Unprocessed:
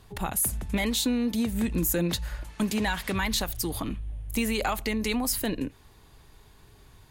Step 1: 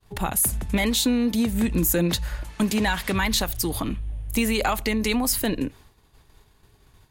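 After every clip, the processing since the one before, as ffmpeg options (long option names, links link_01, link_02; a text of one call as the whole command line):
ffmpeg -i in.wav -af "agate=range=-33dB:threshold=-46dB:ratio=3:detection=peak,volume=4.5dB" out.wav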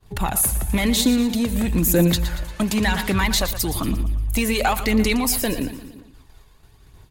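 ffmpeg -i in.wav -filter_complex "[0:a]asplit=2[link_01][link_02];[link_02]aeval=exprs='0.316*sin(PI/2*1.58*val(0)/0.316)':channel_layout=same,volume=-5.5dB[link_03];[link_01][link_03]amix=inputs=2:normalize=0,aecho=1:1:116|232|348|464|580:0.251|0.126|0.0628|0.0314|0.0157,flanger=delay=0:depth=2:regen=54:speed=1:shape=triangular" out.wav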